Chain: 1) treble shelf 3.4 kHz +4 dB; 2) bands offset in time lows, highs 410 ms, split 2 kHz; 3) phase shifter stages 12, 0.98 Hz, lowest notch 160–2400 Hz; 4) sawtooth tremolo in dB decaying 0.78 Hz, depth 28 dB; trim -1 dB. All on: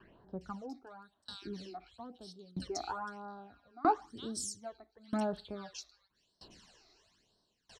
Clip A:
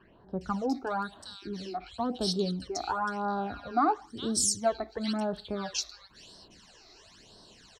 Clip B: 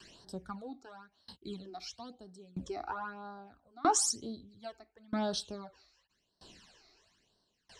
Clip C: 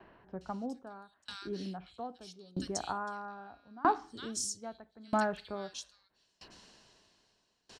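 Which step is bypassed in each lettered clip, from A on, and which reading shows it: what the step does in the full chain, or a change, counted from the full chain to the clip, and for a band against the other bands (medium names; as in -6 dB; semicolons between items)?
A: 4, momentary loudness spread change -9 LU; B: 2, momentary loudness spread change +1 LU; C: 3, 2 kHz band +5.0 dB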